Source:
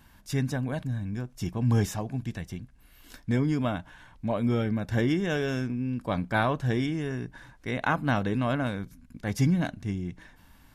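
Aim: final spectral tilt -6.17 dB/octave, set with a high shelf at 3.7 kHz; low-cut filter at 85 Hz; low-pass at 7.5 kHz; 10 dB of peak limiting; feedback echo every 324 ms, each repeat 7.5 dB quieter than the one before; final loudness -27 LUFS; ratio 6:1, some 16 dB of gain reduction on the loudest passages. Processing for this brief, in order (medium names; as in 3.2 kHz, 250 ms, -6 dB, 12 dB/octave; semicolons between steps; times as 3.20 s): high-pass 85 Hz; low-pass 7.5 kHz; treble shelf 3.7 kHz -6.5 dB; compression 6:1, threshold -38 dBFS; peak limiter -34.5 dBFS; feedback delay 324 ms, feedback 42%, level -7.5 dB; trim +17 dB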